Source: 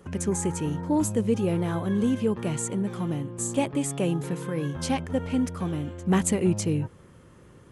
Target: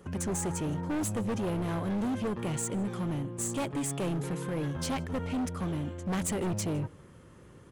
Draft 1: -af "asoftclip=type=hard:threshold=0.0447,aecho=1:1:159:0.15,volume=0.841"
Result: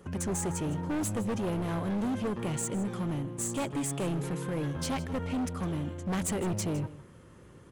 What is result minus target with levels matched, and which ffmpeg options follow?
echo-to-direct +10.5 dB
-af "asoftclip=type=hard:threshold=0.0447,aecho=1:1:159:0.0447,volume=0.841"

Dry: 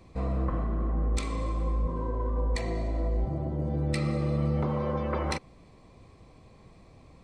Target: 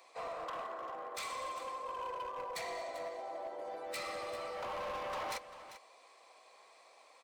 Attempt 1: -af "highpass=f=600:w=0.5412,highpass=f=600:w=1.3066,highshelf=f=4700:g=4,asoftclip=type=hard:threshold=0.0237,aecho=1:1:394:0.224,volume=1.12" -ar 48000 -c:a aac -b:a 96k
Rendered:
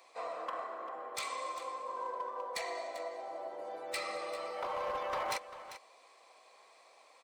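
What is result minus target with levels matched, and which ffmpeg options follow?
hard clipper: distortion -5 dB
-af "highpass=f=600:w=0.5412,highpass=f=600:w=1.3066,highshelf=f=4700:g=4,asoftclip=type=hard:threshold=0.0119,aecho=1:1:394:0.224,volume=1.12" -ar 48000 -c:a aac -b:a 96k

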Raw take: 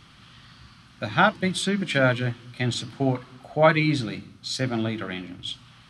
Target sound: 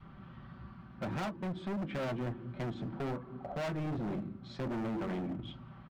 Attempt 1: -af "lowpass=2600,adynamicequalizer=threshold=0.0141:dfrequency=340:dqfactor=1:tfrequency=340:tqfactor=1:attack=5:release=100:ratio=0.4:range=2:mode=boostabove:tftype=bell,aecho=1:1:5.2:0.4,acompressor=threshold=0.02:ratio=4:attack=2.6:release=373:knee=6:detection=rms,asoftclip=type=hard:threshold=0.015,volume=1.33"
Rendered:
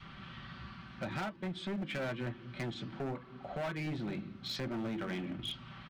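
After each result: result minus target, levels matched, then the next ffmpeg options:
compression: peak gain reduction +7 dB; 2 kHz band +5.0 dB
-af "lowpass=2600,adynamicequalizer=threshold=0.0141:dfrequency=340:dqfactor=1:tfrequency=340:tqfactor=1:attack=5:release=100:ratio=0.4:range=2:mode=boostabove:tftype=bell,aecho=1:1:5.2:0.4,acompressor=threshold=0.0501:ratio=4:attack=2.6:release=373:knee=6:detection=rms,asoftclip=type=hard:threshold=0.015,volume=1.33"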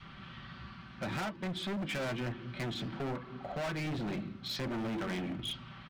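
2 kHz band +5.0 dB
-af "lowpass=950,adynamicequalizer=threshold=0.0141:dfrequency=340:dqfactor=1:tfrequency=340:tqfactor=1:attack=5:release=100:ratio=0.4:range=2:mode=boostabove:tftype=bell,aecho=1:1:5.2:0.4,acompressor=threshold=0.0501:ratio=4:attack=2.6:release=373:knee=6:detection=rms,asoftclip=type=hard:threshold=0.015,volume=1.33"

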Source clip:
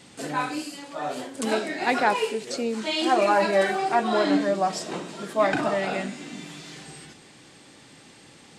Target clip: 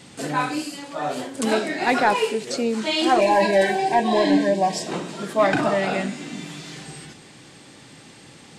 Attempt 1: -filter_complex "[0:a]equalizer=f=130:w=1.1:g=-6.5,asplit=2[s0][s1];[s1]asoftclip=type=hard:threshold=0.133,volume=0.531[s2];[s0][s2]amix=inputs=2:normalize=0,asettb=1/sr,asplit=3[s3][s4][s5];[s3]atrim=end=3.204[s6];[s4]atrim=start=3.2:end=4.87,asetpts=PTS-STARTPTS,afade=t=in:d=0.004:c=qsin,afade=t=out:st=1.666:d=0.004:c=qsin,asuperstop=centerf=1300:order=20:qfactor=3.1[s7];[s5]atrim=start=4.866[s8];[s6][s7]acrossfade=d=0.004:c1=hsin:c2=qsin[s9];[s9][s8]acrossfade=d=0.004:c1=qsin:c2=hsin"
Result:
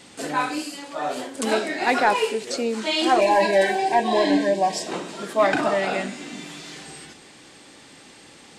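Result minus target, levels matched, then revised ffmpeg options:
125 Hz band -5.5 dB
-filter_complex "[0:a]equalizer=f=130:w=1.1:g=3.5,asplit=2[s0][s1];[s1]asoftclip=type=hard:threshold=0.133,volume=0.531[s2];[s0][s2]amix=inputs=2:normalize=0,asettb=1/sr,asplit=3[s3][s4][s5];[s3]atrim=end=3.204[s6];[s4]atrim=start=3.2:end=4.87,asetpts=PTS-STARTPTS,afade=t=in:d=0.004:c=qsin,afade=t=out:st=1.666:d=0.004:c=qsin,asuperstop=centerf=1300:order=20:qfactor=3.1[s7];[s5]atrim=start=4.866[s8];[s6][s7]acrossfade=d=0.004:c1=hsin:c2=qsin[s9];[s9][s8]acrossfade=d=0.004:c1=qsin:c2=hsin"

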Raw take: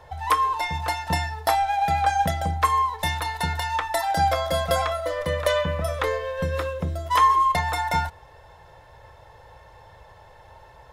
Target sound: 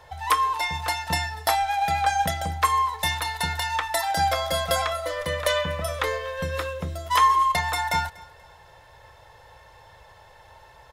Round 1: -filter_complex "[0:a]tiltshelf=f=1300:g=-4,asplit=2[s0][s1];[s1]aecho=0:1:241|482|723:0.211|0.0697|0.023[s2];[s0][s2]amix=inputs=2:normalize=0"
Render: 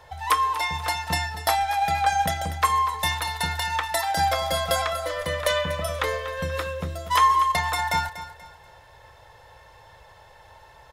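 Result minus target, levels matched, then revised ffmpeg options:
echo-to-direct +9.5 dB
-filter_complex "[0:a]tiltshelf=f=1300:g=-4,asplit=2[s0][s1];[s1]aecho=0:1:241|482:0.0708|0.0234[s2];[s0][s2]amix=inputs=2:normalize=0"

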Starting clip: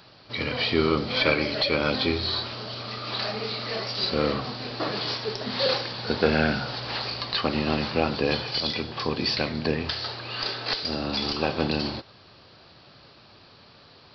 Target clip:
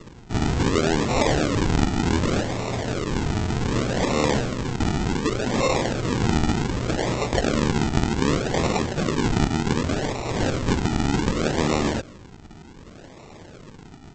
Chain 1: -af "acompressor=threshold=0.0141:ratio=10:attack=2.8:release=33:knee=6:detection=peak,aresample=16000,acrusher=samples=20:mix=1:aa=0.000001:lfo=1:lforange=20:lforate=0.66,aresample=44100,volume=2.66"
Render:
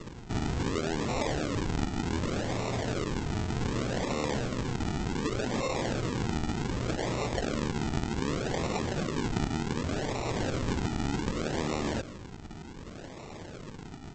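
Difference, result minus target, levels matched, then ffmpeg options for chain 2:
compression: peak gain reduction +10.5 dB
-af "acompressor=threshold=0.0531:ratio=10:attack=2.8:release=33:knee=6:detection=peak,aresample=16000,acrusher=samples=20:mix=1:aa=0.000001:lfo=1:lforange=20:lforate=0.66,aresample=44100,volume=2.66"

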